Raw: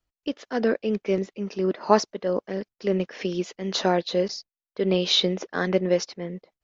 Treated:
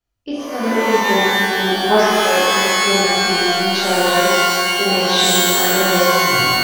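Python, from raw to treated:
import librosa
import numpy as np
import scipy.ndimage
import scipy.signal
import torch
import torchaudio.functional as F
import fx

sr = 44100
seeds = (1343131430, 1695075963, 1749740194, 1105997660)

y = fx.tape_stop_end(x, sr, length_s=0.4)
y = fx.rev_shimmer(y, sr, seeds[0], rt60_s=2.3, semitones=12, shimmer_db=-2, drr_db=-9.0)
y = y * 10.0 ** (-3.0 / 20.0)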